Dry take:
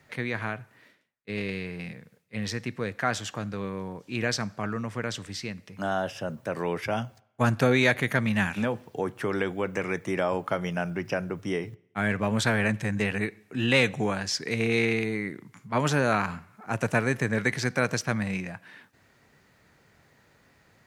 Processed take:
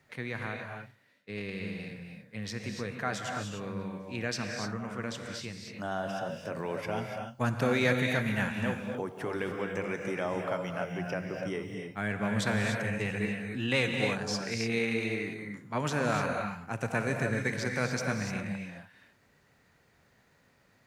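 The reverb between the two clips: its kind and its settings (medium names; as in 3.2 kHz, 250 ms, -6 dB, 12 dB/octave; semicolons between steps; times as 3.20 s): gated-style reverb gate 320 ms rising, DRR 2.5 dB; trim -6.5 dB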